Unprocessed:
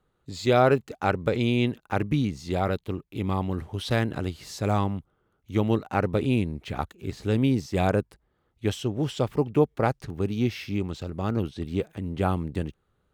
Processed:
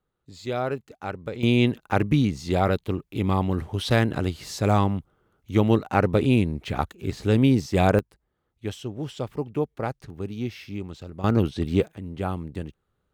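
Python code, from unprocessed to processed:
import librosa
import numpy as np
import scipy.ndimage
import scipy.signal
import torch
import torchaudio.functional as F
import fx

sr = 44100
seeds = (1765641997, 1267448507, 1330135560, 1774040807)

y = fx.gain(x, sr, db=fx.steps((0.0, -8.0), (1.43, 4.0), (7.99, -5.0), (11.24, 6.0), (11.88, -3.5)))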